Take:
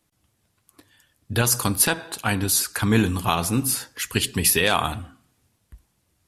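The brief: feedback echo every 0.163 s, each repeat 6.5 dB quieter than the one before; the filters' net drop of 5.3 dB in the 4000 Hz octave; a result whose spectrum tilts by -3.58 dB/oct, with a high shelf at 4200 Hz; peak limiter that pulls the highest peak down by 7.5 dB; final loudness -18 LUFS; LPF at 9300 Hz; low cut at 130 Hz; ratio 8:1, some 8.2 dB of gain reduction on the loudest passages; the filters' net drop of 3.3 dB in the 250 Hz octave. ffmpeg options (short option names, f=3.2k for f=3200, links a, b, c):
-af "highpass=130,lowpass=9.3k,equalizer=f=250:t=o:g=-3.5,equalizer=f=4k:t=o:g=-9,highshelf=f=4.2k:g=3.5,acompressor=threshold=-24dB:ratio=8,alimiter=limit=-18dB:level=0:latency=1,aecho=1:1:163|326|489|652|815|978:0.473|0.222|0.105|0.0491|0.0231|0.0109,volume=11.5dB"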